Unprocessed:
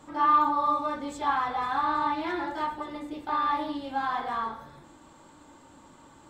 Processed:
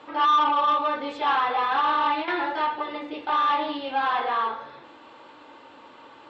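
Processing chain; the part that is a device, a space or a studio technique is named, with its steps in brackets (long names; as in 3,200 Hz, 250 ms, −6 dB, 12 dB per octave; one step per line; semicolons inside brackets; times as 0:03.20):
0:01.29–0:02.28: noise gate with hold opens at −21 dBFS
overdrive pedal into a guitar cabinet (mid-hump overdrive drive 15 dB, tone 6,600 Hz, clips at −12.5 dBFS; loudspeaker in its box 92–4,500 Hz, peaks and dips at 170 Hz −9 dB, 470 Hz +7 dB, 2,700 Hz +6 dB)
level −1.5 dB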